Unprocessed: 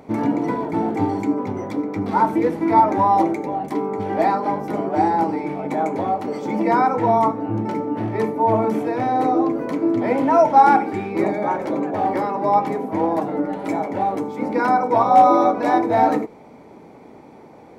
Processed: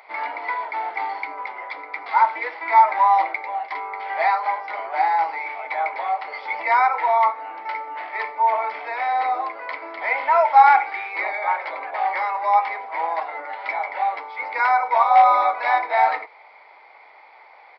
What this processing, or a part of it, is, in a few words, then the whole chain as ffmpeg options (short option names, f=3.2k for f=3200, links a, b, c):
musical greeting card: -af "aresample=11025,aresample=44100,highpass=f=790:w=0.5412,highpass=f=790:w=1.3066,equalizer=f=2.1k:t=o:w=0.27:g=11.5,volume=2.5dB"